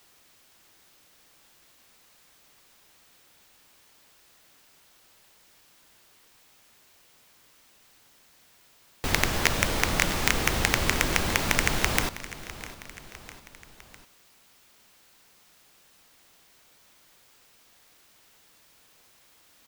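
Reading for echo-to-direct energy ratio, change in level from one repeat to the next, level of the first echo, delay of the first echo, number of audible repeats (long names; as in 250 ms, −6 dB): −14.5 dB, −5.0 dB, −16.0 dB, 653 ms, 3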